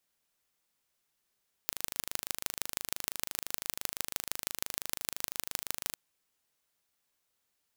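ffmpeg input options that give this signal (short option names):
-f lavfi -i "aevalsrc='0.708*eq(mod(n,1703),0)*(0.5+0.5*eq(mod(n,6812),0))':d=4.28:s=44100"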